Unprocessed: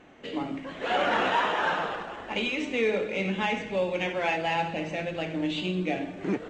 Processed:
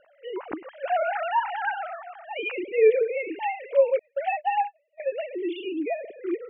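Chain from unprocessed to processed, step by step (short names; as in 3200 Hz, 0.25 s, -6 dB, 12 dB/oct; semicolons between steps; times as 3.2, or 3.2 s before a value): sine-wave speech; 3.99–5 gate -28 dBFS, range -36 dB; high shelf 2700 Hz -10 dB; gain +3 dB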